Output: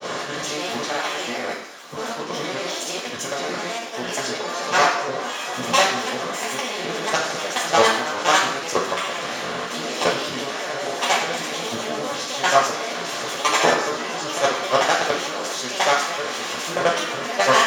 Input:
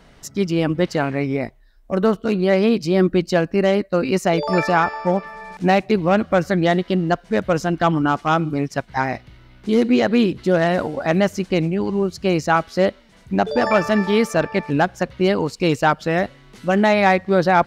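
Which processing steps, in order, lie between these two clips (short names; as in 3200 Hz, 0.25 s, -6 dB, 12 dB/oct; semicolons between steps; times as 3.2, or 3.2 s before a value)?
per-bin compression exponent 0.4; HPF 780 Hz 6 dB/oct; tilt +2.5 dB/oct; level quantiser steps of 14 dB; grains, pitch spread up and down by 7 st; reverb RT60 0.70 s, pre-delay 3 ms, DRR -4.5 dB; gain -6.5 dB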